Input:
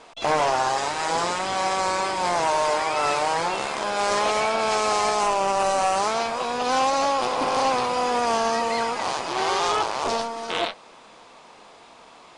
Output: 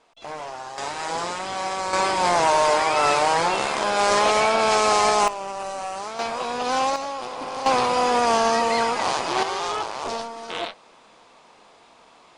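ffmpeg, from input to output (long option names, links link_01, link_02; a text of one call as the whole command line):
ffmpeg -i in.wav -af "asetnsamples=nb_out_samples=441:pad=0,asendcmd='0.78 volume volume -3.5dB;1.93 volume volume 3.5dB;5.28 volume volume -9dB;6.19 volume volume -1dB;6.96 volume volume -8dB;7.66 volume volume 3dB;9.43 volume volume -4dB',volume=-13dB" out.wav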